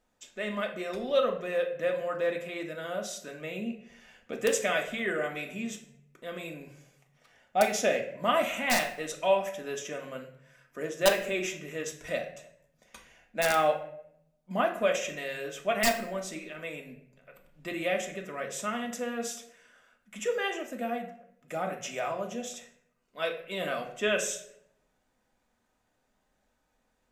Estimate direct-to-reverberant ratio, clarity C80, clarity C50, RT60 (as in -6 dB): 1.5 dB, 13.5 dB, 10.0 dB, 0.70 s